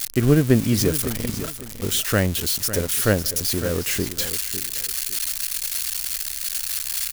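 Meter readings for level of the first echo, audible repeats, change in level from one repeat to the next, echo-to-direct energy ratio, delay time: -12.0 dB, 2, -11.5 dB, -11.5 dB, 0.553 s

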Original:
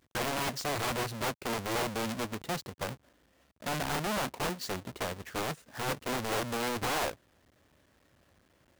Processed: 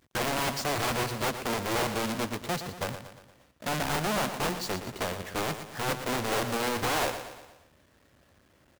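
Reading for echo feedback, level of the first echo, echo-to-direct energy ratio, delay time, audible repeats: 50%, -10.0 dB, -9.0 dB, 0.117 s, 5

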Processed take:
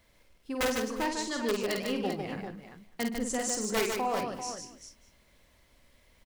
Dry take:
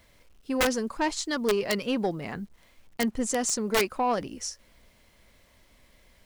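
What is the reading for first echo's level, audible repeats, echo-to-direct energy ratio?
-5.0 dB, 7, -1.0 dB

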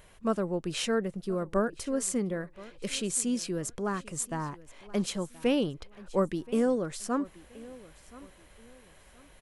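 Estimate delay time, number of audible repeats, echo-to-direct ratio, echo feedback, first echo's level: 1.026 s, 2, -19.5 dB, 31%, -20.0 dB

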